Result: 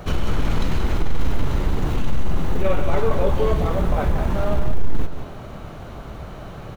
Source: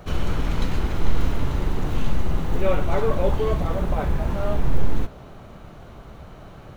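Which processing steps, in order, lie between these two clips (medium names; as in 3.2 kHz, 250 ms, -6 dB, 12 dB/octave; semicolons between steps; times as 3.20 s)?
in parallel at +0.5 dB: compression, threshold -25 dBFS, peak gain reduction 15 dB; on the sum: saturation -8.5 dBFS, distortion -19 dB; delay 178 ms -9 dB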